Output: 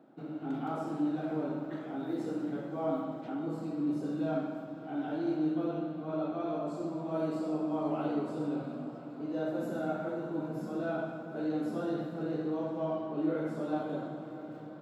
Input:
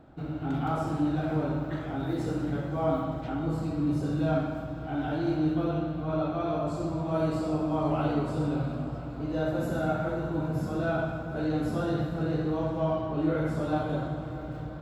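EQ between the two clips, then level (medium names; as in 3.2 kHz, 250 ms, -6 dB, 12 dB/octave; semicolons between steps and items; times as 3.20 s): high-pass 180 Hz 24 dB/octave; peaking EQ 320 Hz +5.5 dB 2.4 oct; -8.5 dB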